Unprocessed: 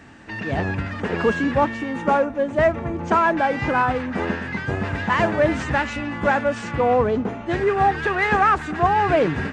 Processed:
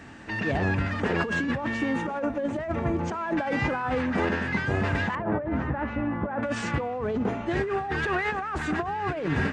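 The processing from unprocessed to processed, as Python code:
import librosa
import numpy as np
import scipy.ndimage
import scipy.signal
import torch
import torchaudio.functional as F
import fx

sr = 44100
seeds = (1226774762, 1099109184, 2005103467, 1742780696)

y = fx.over_compress(x, sr, threshold_db=-24.0, ratio=-1.0)
y = fx.lowpass(y, sr, hz=1200.0, slope=12, at=(5.15, 6.43))
y = F.gain(torch.from_numpy(y), -3.0).numpy()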